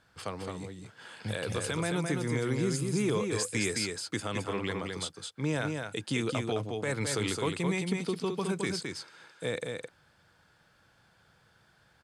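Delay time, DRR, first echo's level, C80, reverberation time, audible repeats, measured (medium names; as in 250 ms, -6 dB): 215 ms, no reverb, -4.5 dB, no reverb, no reverb, 1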